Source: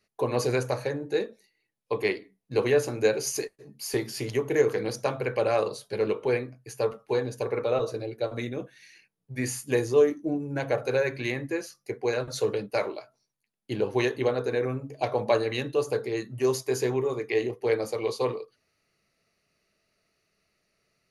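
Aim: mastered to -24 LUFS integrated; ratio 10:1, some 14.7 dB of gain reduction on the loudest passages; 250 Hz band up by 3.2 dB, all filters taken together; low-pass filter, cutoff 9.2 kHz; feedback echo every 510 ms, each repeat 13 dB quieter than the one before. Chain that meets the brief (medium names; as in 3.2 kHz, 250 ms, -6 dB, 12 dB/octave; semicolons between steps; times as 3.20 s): low-pass 9.2 kHz; peaking EQ 250 Hz +4.5 dB; compression 10:1, threshold -30 dBFS; feedback delay 510 ms, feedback 22%, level -13 dB; trim +11.5 dB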